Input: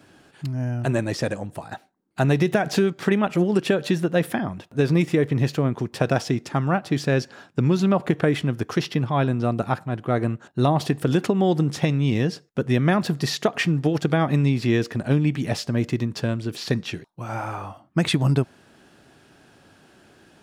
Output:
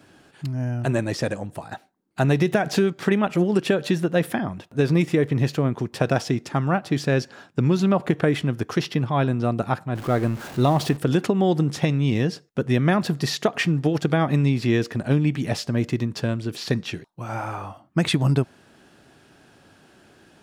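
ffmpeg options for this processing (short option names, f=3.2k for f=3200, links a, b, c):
-filter_complex "[0:a]asettb=1/sr,asplit=3[a][b][c];[a]atrim=end=9.954[d];[b]atrim=start=9.95:end=10.97,asetpts=PTS-STARTPTS,afade=t=in:d=0.004:c=qsin,afade=t=out:st=1.016:d=0.004:c=qsin,aeval=exprs='val(0)+0.5*0.0237*sgn(val(0))':c=same[e];[c]atrim=start=10.966[f];[d][e]acrossfade=d=0.004:c1=hsin:c2=qsin[g];[g][f]acrossfade=d=0.004:c1=qsin:c2=hsin"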